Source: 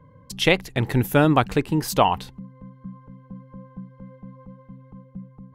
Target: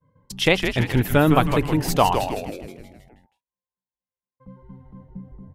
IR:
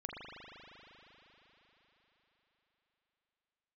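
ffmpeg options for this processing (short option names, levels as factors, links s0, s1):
-filter_complex "[0:a]asettb=1/sr,asplit=3[s0][s1][s2];[s0]atrim=end=2.264[s3];[s1]atrim=start=2.26:end=4.4,asetpts=PTS-STARTPTS,afade=t=in:d=0.004:c=qsin,afade=t=out:st=2.136:d=0.004:c=qsin,aderivative[s4];[s2]atrim=start=4.396[s5];[s3][s4]acrossfade=d=0.004:c1=hsin:c2=qsin[s6];[s6][s5]acrossfade=d=0.004:c1=qsin:c2=hsin,agate=range=0.0224:threshold=0.00794:ratio=3:detection=peak,asplit=8[s7][s8][s9][s10][s11][s12][s13][s14];[s8]adelay=159,afreqshift=-140,volume=0.473[s15];[s9]adelay=318,afreqshift=-280,volume=0.269[s16];[s10]adelay=477,afreqshift=-420,volume=0.153[s17];[s11]adelay=636,afreqshift=-560,volume=0.0881[s18];[s12]adelay=795,afreqshift=-700,volume=0.0501[s19];[s13]adelay=954,afreqshift=-840,volume=0.0285[s20];[s14]adelay=1113,afreqshift=-980,volume=0.0162[s21];[s7][s15][s16][s17][s18][s19][s20][s21]amix=inputs=8:normalize=0"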